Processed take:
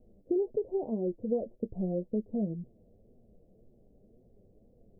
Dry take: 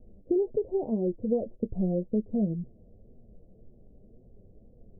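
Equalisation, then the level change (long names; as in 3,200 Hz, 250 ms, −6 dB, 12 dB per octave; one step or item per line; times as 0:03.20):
low-shelf EQ 150 Hz −8 dB
−2.0 dB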